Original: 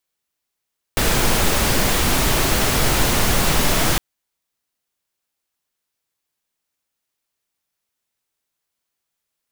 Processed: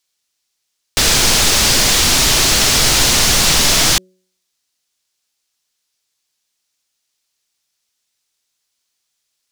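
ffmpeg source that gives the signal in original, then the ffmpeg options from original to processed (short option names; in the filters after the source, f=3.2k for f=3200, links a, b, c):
-f lavfi -i "anoisesrc=c=pink:a=0.724:d=3.01:r=44100:seed=1"
-af "equalizer=f=5.3k:t=o:w=2.2:g=13,bandreject=f=185.3:t=h:w=4,bandreject=f=370.6:t=h:w=4,bandreject=f=555.9:t=h:w=4"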